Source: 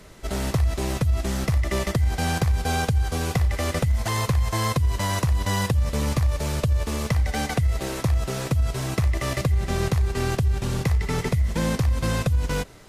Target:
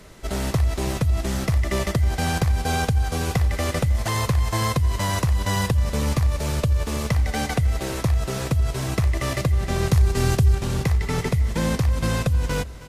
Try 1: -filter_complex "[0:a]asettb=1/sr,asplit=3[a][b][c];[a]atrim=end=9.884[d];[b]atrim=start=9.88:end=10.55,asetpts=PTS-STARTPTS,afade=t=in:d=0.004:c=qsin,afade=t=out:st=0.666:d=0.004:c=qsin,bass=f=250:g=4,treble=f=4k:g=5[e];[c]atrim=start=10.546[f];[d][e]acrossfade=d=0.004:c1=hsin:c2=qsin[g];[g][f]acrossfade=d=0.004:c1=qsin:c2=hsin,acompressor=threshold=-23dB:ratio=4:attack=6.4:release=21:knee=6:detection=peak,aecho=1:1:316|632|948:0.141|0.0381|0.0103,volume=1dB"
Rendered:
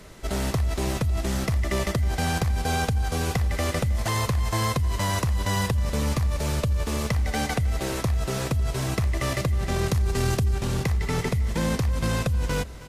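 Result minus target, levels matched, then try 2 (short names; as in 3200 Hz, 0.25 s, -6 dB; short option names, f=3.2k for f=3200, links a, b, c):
compressor: peak gain reduction +8.5 dB
-filter_complex "[0:a]asettb=1/sr,asplit=3[a][b][c];[a]atrim=end=9.884[d];[b]atrim=start=9.88:end=10.55,asetpts=PTS-STARTPTS,afade=t=in:d=0.004:c=qsin,afade=t=out:st=0.666:d=0.004:c=qsin,bass=f=250:g=4,treble=f=4k:g=5[e];[c]atrim=start=10.546[f];[d][e]acrossfade=d=0.004:c1=hsin:c2=qsin[g];[g][f]acrossfade=d=0.004:c1=qsin:c2=hsin,aecho=1:1:316|632|948:0.141|0.0381|0.0103,volume=1dB"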